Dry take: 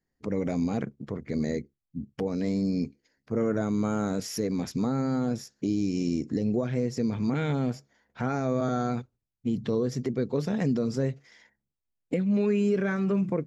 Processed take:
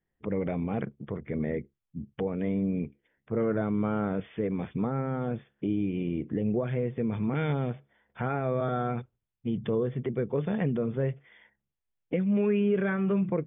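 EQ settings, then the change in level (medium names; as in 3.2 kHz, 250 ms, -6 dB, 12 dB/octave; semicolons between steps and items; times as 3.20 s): brick-wall FIR low-pass 3.6 kHz; peaking EQ 260 Hz -8 dB 0.25 oct; 0.0 dB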